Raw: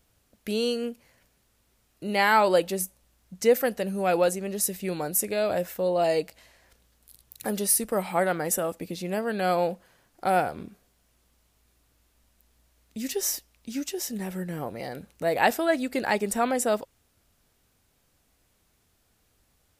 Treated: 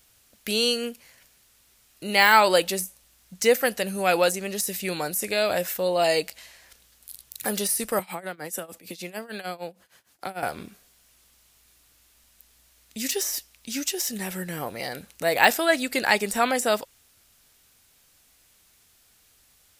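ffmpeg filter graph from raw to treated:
-filter_complex "[0:a]asettb=1/sr,asplit=3[a][b][c];[a]atrim=end=7.994[d];[b]atrim=start=7.99:end=10.43,asetpts=PTS-STARTPTS,afade=t=in:d=0.004:c=qsin,afade=t=out:st=2.436:d=0.004:c=qsin,highpass=58,tremolo=f=6.6:d=0.91,acrossover=split=140|400[e][f][g];[e]acompressor=threshold=-55dB:ratio=4[h];[f]acompressor=threshold=-38dB:ratio=4[i];[g]acompressor=threshold=-38dB:ratio=4[j];[h][i][j]amix=inputs=3:normalize=0[k];[c]atrim=start=10.426[l];[d][k]acrossfade=d=0.004:c1=hsin:c2=qsin[m];[m][l]acrossfade=d=0.004:c1=qsin:c2=hsin,deesser=0.6,tiltshelf=f=1.2k:g=-6.5,volume=5dB"

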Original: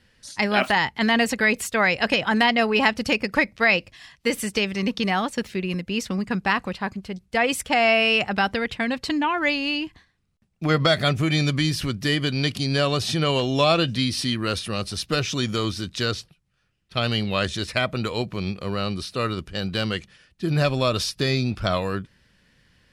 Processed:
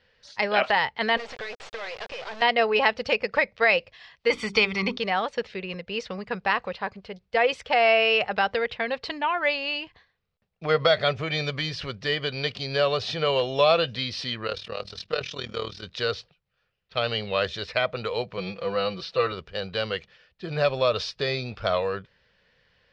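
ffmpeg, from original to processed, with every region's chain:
-filter_complex "[0:a]asettb=1/sr,asplit=3[a][b][c];[a]atrim=end=1.174[d];[b]atrim=start=1.17:end=2.42,asetpts=PTS-STARTPTS,afade=t=in:d=0.004:c=qsin,afade=t=out:st=1.246:d=0.004:c=qsin,acompressor=threshold=-24dB:ratio=8:attack=3.2:release=140:knee=1:detection=peak,acrusher=bits=3:dc=4:mix=0:aa=0.000001[e];[c]atrim=start=2.416[f];[d][e]acrossfade=d=0.004:c1=hsin:c2=qsin[g];[g][f]acrossfade=d=0.004:c1=qsin:c2=hsin,asettb=1/sr,asplit=3[h][i][j];[h]atrim=end=4.304[k];[i]atrim=start=4.3:end=4.97,asetpts=PTS-STARTPTS,afade=t=in:d=0.004:c=qsin,afade=t=out:st=0.666:d=0.004:c=qsin,bandreject=f=50:t=h:w=6,bandreject=f=100:t=h:w=6,bandreject=f=150:t=h:w=6,bandreject=f=200:t=h:w=6,bandreject=f=250:t=h:w=6,bandreject=f=300:t=h:w=6,bandreject=f=350:t=h:w=6,bandreject=f=400:t=h:w=6,aecho=1:1:0.9:0.66,atrim=end_sample=29547,acontrast=30[l];[j]atrim=start=4.966[m];[k][l]acrossfade=d=0.004:c1=hsin:c2=qsin[n];[n][m]acrossfade=d=0.004:c1=qsin:c2=hsin,asettb=1/sr,asplit=3[o][p][q];[o]atrim=end=14.474[r];[p]atrim=start=14.47:end=15.83,asetpts=PTS-STARTPTS,afade=t=in:d=0.004:c=qsin,afade=t=out:st=1.356:d=0.004:c=qsin,bandreject=f=50:t=h:w=6,bandreject=f=100:t=h:w=6,bandreject=f=150:t=h:w=6,bandreject=f=200:t=h:w=6,bandreject=f=250:t=h:w=6,bandreject=f=300:t=h:w=6,bandreject=f=350:t=h:w=6,tremolo=f=39:d=0.824[s];[q]atrim=start=15.826[t];[r][s]acrossfade=d=0.004:c1=hsin:c2=qsin[u];[u][t]acrossfade=d=0.004:c1=qsin:c2=hsin,asettb=1/sr,asplit=3[v][w][x];[v]atrim=end=18.374[y];[w]atrim=start=18.37:end=19.32,asetpts=PTS-STARTPTS,afade=t=in:d=0.004:c=qsin,afade=t=out:st=0.946:d=0.004:c=qsin,lowpass=6.7k,aecho=1:1:6:0.87,atrim=end_sample=41895,aeval=exprs='val(0)*gte(abs(val(0)),0.00335)':c=same[z];[x]atrim=start=19.316[aa];[y][z]acrossfade=d=0.004:c1=hsin:c2=qsin[ab];[ab][aa]acrossfade=d=0.004:c1=qsin:c2=hsin,lowpass=f=4.8k:w=0.5412,lowpass=f=4.8k:w=1.3066,lowshelf=f=380:t=q:w=3:g=-6.5,volume=-2.5dB"

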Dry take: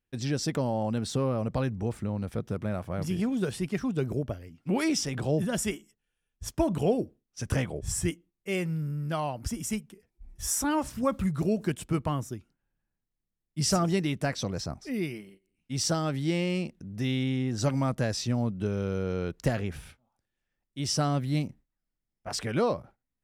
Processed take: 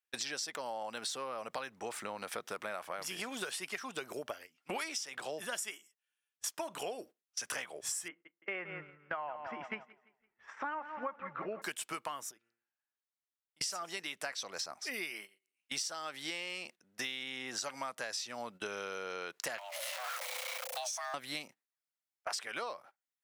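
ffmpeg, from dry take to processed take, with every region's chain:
-filter_complex "[0:a]asettb=1/sr,asplit=3[a][b][c];[a]atrim=end=8.084[d];[b]atrim=start=8.08:end=11.62,asetpts=PTS-STARTPTS,afade=t=in:d=0.004:c=qsin,afade=t=out:st=3.536:d=0.004:c=qsin,lowpass=f=2k:w=0.5412,lowpass=f=2k:w=1.3066,aecho=1:1:169|338|507|676|845:0.251|0.116|0.0532|0.0244|0.0112,atrim=end_sample=156114[e];[c]atrim=start=11.616[f];[d][e]acrossfade=d=0.004:c1=hsin:c2=qsin[g];[g][f]acrossfade=d=0.004:c1=qsin:c2=hsin,asettb=1/sr,asplit=3[h][i][j];[h]atrim=end=12.314[k];[i]atrim=start=12.31:end=13.61,asetpts=PTS-STARTPTS,afade=t=in:d=0.004:c=qsin,afade=t=out:st=1.296:d=0.004:c=qsin,highshelf=f=4.1k:g=-6.5,bandreject=f=116:t=h:w=4,bandreject=f=232:t=h:w=4,bandreject=f=348:t=h:w=4,bandreject=f=464:t=h:w=4,bandreject=f=580:t=h:w=4,bandreject=f=696:t=h:w=4,bandreject=f=812:t=h:w=4,bandreject=f=928:t=h:w=4,bandreject=f=1.044k:t=h:w=4,bandreject=f=1.16k:t=h:w=4,bandreject=f=1.276k:t=h:w=4,bandreject=f=1.392k:t=h:w=4,bandreject=f=1.508k:t=h:w=4,bandreject=f=1.624k:t=h:w=4,bandreject=f=1.74k:t=h:w=4,bandreject=f=1.856k:t=h:w=4,bandreject=f=1.972k:t=h:w=4,bandreject=f=2.088k:t=h:w=4,bandreject=f=2.204k:t=h:w=4,bandreject=f=2.32k:t=h:w=4,bandreject=f=2.436k:t=h:w=4,bandreject=f=2.552k:t=h:w=4,bandreject=f=2.668k:t=h:w=4,acompressor=threshold=-48dB:ratio=6:attack=3.2:release=140:knee=1:detection=peak[l];[j]atrim=start=13.606[m];[k][l]acrossfade=d=0.004:c1=hsin:c2=qsin[n];[n][m]acrossfade=d=0.004:c1=qsin:c2=hsin,asettb=1/sr,asplit=3[o][p][q];[o]atrim=end=19.584[r];[p]atrim=start=19.58:end=21.14,asetpts=PTS-STARTPTS,afade=t=in:d=0.004:c=qsin,afade=t=out:st=1.556:d=0.004:c=qsin,aeval=exprs='val(0)+0.5*0.01*sgn(val(0))':c=same,afreqshift=500,acompressor=threshold=-40dB:ratio=5:attack=3.2:release=140:knee=1:detection=peak[s];[q]atrim=start=21.136[t];[r][s]acrossfade=d=0.004:c1=hsin:c2=qsin[u];[u][t]acrossfade=d=0.004:c1=qsin:c2=hsin,highpass=1k,agate=range=-15dB:threshold=-54dB:ratio=16:detection=peak,acompressor=threshold=-48dB:ratio=12,volume=12dB"

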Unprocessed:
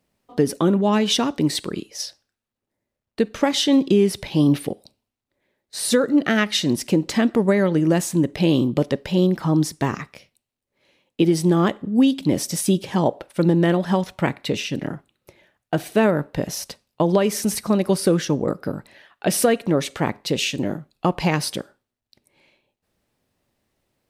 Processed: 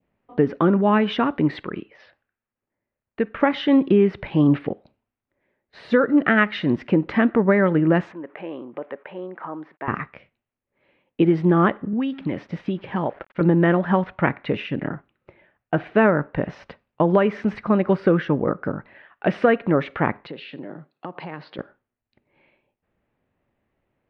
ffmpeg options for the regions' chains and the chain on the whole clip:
-filter_complex "[0:a]asettb=1/sr,asplit=3[a][b][c];[a]atrim=end=1.634[d];[b]atrim=start=1.63:end=3.4,asetpts=PTS-STARTPTS,afade=t=in:d=0.004:c=qsin,afade=t=out:st=1.766:d=0.004:c=qsin,lowpass=2.7k,tiltshelf=f=1.2k:g=-3.5[e];[c]atrim=start=3.396[f];[d][e]acrossfade=d=0.004:c1=hsin:c2=qsin[g];[g][f]acrossfade=d=0.004:c1=qsin:c2=hsin,asettb=1/sr,asplit=3[h][i][j];[h]atrim=end=8.124[k];[i]atrim=start=8.12:end=9.88,asetpts=PTS-STARTPTS,afade=t=in:d=0.004:c=qsin,afade=t=out:st=1.756:d=0.004:c=qsin,acompressor=threshold=-31dB:ratio=1.5:attack=3.2:release=140:knee=1:detection=peak,aeval=exprs='val(0)*gte(abs(val(0)),0.00282)':c=same,highpass=520,lowpass=2k[l];[j]atrim=start=9.876[m];[k][l]acrossfade=d=0.004:c1=hsin:c2=qsin[n];[n][m]acrossfade=d=0.004:c1=qsin:c2=hsin,asettb=1/sr,asplit=3[o][p][q];[o]atrim=end=11.934[r];[p]atrim=start=11.93:end=13.41,asetpts=PTS-STARTPTS,afade=t=in:d=0.004:c=qsin,afade=t=out:st=1.476:d=0.004:c=qsin,acrossover=split=1100|6100[s][t][u];[s]acompressor=threshold=-23dB:ratio=4[v];[t]acompressor=threshold=-33dB:ratio=4[w];[u]acompressor=threshold=-43dB:ratio=4[x];[v][w][x]amix=inputs=3:normalize=0,aeval=exprs='val(0)*gte(abs(val(0)),0.00531)':c=same[y];[q]atrim=start=13.406[z];[r][y]acrossfade=d=0.004:c1=hsin:c2=qsin[aa];[aa][z]acrossfade=d=0.004:c1=qsin:c2=hsin,asettb=1/sr,asplit=3[ab][ac][ad];[ab]atrim=end=20.274[ae];[ac]atrim=start=20.27:end=21.59,asetpts=PTS-STARTPTS,afade=t=in:d=0.004:c=qsin,afade=t=out:st=1.316:d=0.004:c=qsin,acompressor=threshold=-29dB:ratio=6:attack=3.2:release=140:knee=1:detection=peak,highpass=f=160:w=0.5412,highpass=f=160:w=1.3066,equalizer=f=210:t=q:w=4:g=-8,equalizer=f=2.4k:t=q:w=4:g=-4,equalizer=f=4.3k:t=q:w=4:g=9,lowpass=f=4.9k:w=0.5412,lowpass=f=4.9k:w=1.3066[af];[ad]atrim=start=21.586[ag];[ae][af]acrossfade=d=0.004:c1=hsin:c2=qsin[ah];[ah][ag]acrossfade=d=0.004:c1=qsin:c2=hsin,lowpass=f=2.5k:w=0.5412,lowpass=f=2.5k:w=1.3066,adynamicequalizer=threshold=0.01:dfrequency=1400:dqfactor=1.4:tfrequency=1400:tqfactor=1.4:attack=5:release=100:ratio=0.375:range=3:mode=boostabove:tftype=bell"

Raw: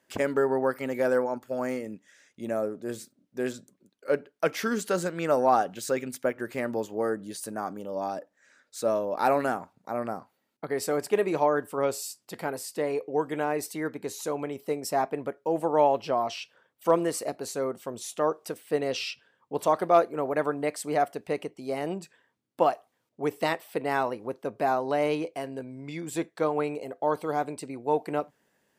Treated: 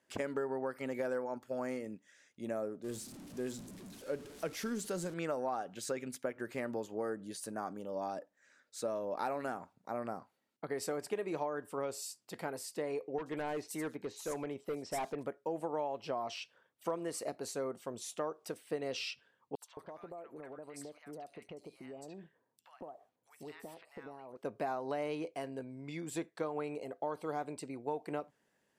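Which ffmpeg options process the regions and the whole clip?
-filter_complex "[0:a]asettb=1/sr,asplit=3[a][b][c];[a]atrim=end=2.844[d];[b]atrim=start=2.84:end=5.14,asetpts=PTS-STARTPTS,afade=t=in:d=0.004:c=qsin,afade=t=out:st=2.296:d=0.004:c=qsin,aeval=exprs='val(0)+0.5*0.0158*sgn(val(0))':c=same,equalizer=f=1.4k:w=0.35:g=-8[e];[c]atrim=start=5.136[f];[d][e]acrossfade=d=0.004:c1=hsin:c2=qsin[g];[g][f]acrossfade=d=0.004:c1=qsin:c2=hsin,asettb=1/sr,asplit=3[h][i][j];[h]atrim=end=13.184[k];[i]atrim=start=13.18:end=15.26,asetpts=PTS-STARTPTS,afade=t=in:d=0.004:c=qsin,afade=t=out:st=2.076:d=0.004:c=qsin,asoftclip=type=hard:threshold=-26dB,acrossover=split=5100[l][m];[m]adelay=80[n];[l][n]amix=inputs=2:normalize=0,atrim=end_sample=91728[o];[j]atrim=start=15.256[p];[k][o]acrossfade=d=0.004:c1=hsin:c2=qsin[q];[q][p]acrossfade=d=0.004:c1=qsin:c2=hsin,asettb=1/sr,asplit=3[r][s][t];[r]atrim=end=19.554[u];[s]atrim=start=19.55:end=24.37,asetpts=PTS-STARTPTS,afade=t=in:d=0.004:c=qsin,afade=t=out:st=4.816:d=0.004:c=qsin,acompressor=threshold=-39dB:ratio=5:attack=3.2:release=140:knee=1:detection=peak,acrossover=split=1100|4400[v][w][x];[w]adelay=70[y];[v]adelay=220[z];[z][y][x]amix=inputs=3:normalize=0,atrim=end_sample=212562[aa];[t]atrim=start=24.366[ab];[u][aa]acrossfade=d=0.004:c1=hsin:c2=qsin[ac];[ac][ab]acrossfade=d=0.004:c1=qsin:c2=hsin,lowpass=12k,acompressor=threshold=-27dB:ratio=6,volume=-6dB"

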